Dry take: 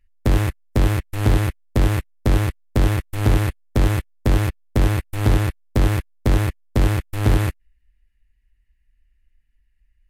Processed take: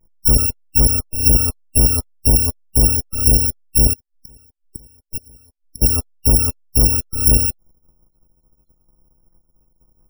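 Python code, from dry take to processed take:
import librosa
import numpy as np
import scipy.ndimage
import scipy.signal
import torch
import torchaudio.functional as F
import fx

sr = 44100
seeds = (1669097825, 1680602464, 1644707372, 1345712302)

y = fx.bit_reversed(x, sr, seeds[0], block=256)
y = fx.gate_flip(y, sr, shuts_db=-17.0, range_db=-33, at=(3.93, 5.82))
y = fx.spec_topn(y, sr, count=64)
y = y * librosa.db_to_amplitude(3.5)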